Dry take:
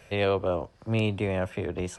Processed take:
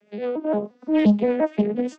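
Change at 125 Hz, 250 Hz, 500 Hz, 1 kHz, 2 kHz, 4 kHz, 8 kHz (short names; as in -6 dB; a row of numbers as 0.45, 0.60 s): -2.0 dB, +11.5 dB, +4.0 dB, +2.5 dB, -2.5 dB, -5.0 dB, n/a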